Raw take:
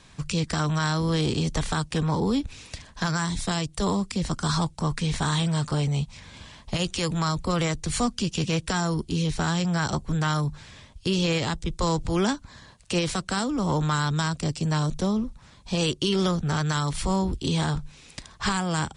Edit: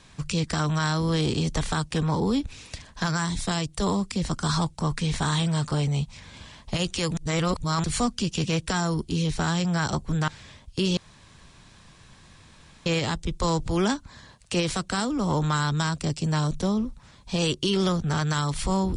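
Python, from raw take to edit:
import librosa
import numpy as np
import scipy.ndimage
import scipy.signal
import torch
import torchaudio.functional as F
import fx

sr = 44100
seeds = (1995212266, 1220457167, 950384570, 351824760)

y = fx.edit(x, sr, fx.reverse_span(start_s=7.17, length_s=0.67),
    fx.cut(start_s=10.28, length_s=0.28),
    fx.insert_room_tone(at_s=11.25, length_s=1.89), tone=tone)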